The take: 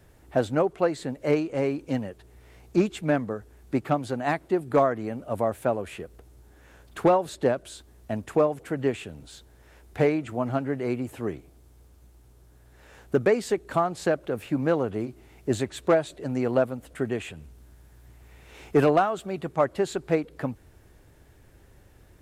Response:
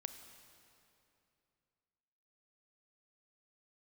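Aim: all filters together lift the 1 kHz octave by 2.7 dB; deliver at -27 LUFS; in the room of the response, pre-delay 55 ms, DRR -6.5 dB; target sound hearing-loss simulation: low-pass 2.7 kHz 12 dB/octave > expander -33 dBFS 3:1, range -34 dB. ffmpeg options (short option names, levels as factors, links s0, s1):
-filter_complex "[0:a]equalizer=f=1000:t=o:g=4,asplit=2[s0][s1];[1:a]atrim=start_sample=2205,adelay=55[s2];[s1][s2]afir=irnorm=-1:irlink=0,volume=2.99[s3];[s0][s3]amix=inputs=2:normalize=0,lowpass=2700,agate=range=0.02:threshold=0.0224:ratio=3,volume=0.376"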